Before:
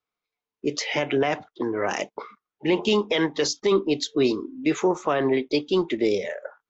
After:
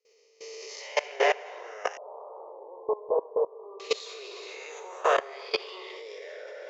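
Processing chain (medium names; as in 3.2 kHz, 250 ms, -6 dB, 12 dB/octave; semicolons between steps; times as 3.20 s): reverse spectral sustain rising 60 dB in 0.93 s; steep high-pass 430 Hz 72 dB/octave; reverberation RT60 2.1 s, pre-delay 32 ms, DRR 2.5 dB; level held to a coarse grid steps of 21 dB; 1.97–3.80 s: steep low-pass 1.1 kHz 72 dB/octave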